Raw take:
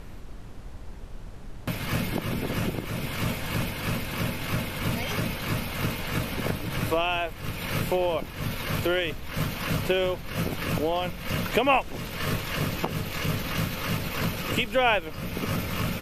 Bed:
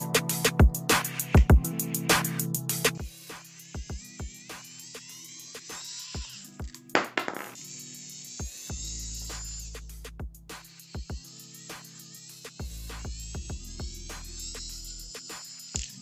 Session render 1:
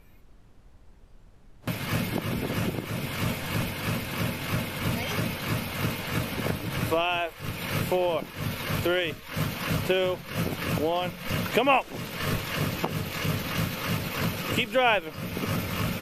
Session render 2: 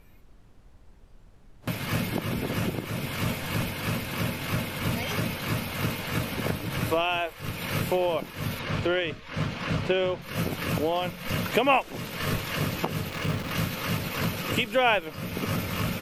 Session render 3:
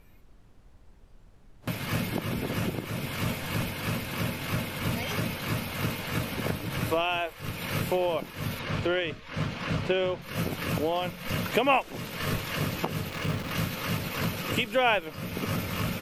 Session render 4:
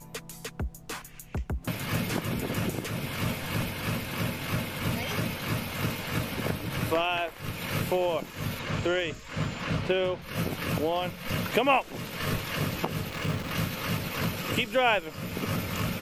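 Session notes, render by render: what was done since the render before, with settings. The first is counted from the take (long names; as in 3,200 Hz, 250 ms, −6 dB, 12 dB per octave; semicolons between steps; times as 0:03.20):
noise reduction from a noise print 13 dB
0:08.59–0:10.22: high-frequency loss of the air 92 metres; 0:13.10–0:13.51: slack as between gear wheels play −32 dBFS
level −1.5 dB
mix in bed −14.5 dB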